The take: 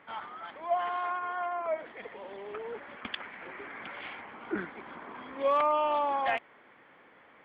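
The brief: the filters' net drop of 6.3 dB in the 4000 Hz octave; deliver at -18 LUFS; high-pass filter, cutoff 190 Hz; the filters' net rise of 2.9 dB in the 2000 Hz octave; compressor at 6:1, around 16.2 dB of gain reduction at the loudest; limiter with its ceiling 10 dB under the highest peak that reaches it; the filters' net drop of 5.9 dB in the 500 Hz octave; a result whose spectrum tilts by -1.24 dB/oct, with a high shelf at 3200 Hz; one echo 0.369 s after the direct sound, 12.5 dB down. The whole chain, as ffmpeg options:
-af "highpass=190,equalizer=f=500:t=o:g=-8,equalizer=f=2k:t=o:g=8.5,highshelf=f=3.2k:g=-8.5,equalizer=f=4k:t=o:g=-8,acompressor=threshold=-43dB:ratio=6,alimiter=level_in=14.5dB:limit=-24dB:level=0:latency=1,volume=-14.5dB,aecho=1:1:369:0.237,volume=29dB"

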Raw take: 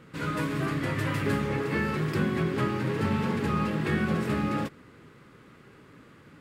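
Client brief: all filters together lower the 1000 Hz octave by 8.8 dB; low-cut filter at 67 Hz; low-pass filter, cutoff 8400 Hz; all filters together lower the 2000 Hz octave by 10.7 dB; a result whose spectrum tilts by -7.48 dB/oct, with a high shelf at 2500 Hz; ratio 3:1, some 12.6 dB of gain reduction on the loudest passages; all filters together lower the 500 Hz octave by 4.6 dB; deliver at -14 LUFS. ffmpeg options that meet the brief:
-af "highpass=67,lowpass=8.4k,equalizer=f=500:t=o:g=-4.5,equalizer=f=1k:t=o:g=-6,equalizer=f=2k:t=o:g=-8,highshelf=f=2.5k:g=-7.5,acompressor=threshold=-42dB:ratio=3,volume=28dB"

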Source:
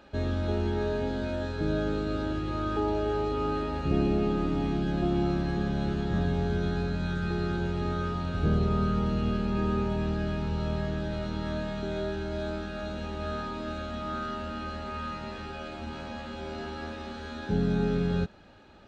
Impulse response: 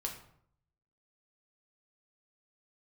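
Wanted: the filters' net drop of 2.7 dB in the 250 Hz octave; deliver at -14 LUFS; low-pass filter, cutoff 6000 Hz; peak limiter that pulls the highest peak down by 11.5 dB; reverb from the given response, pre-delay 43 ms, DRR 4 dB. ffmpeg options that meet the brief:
-filter_complex "[0:a]lowpass=6k,equalizer=f=250:t=o:g=-4,alimiter=level_in=2.5dB:limit=-24dB:level=0:latency=1,volume=-2.5dB,asplit=2[a][b];[1:a]atrim=start_sample=2205,adelay=43[c];[b][c]afir=irnorm=-1:irlink=0,volume=-4.5dB[d];[a][d]amix=inputs=2:normalize=0,volume=21dB"

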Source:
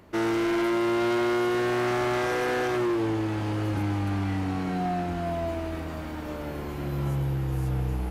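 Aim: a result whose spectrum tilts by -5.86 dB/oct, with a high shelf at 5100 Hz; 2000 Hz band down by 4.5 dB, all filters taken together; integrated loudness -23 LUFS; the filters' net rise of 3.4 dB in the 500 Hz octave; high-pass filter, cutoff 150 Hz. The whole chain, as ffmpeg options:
-af "highpass=150,equalizer=f=500:t=o:g=6,equalizer=f=2k:t=o:g=-7,highshelf=f=5.1k:g=4,volume=3.5dB"

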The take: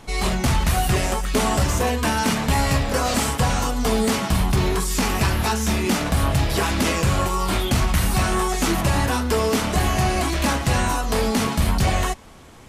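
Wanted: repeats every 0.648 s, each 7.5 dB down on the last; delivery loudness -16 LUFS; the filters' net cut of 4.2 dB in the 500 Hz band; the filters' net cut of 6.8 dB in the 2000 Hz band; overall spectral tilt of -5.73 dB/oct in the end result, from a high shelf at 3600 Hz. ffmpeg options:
-af "equalizer=f=500:t=o:g=-5,equalizer=f=2k:t=o:g=-6,highshelf=f=3.6k:g=-9,aecho=1:1:648|1296|1944|2592|3240:0.422|0.177|0.0744|0.0312|0.0131,volume=7dB"

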